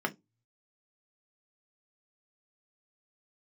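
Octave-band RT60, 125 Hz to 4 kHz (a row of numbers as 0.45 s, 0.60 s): 0.90 s, 0.25 s, 0.20 s, 0.15 s, 0.10 s, 0.15 s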